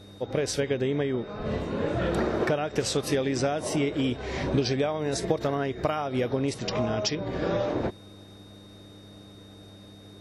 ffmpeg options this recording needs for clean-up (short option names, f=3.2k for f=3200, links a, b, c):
-af "bandreject=f=99.9:t=h:w=4,bandreject=f=199.8:t=h:w=4,bandreject=f=299.7:t=h:w=4,bandreject=f=3.7k:w=30"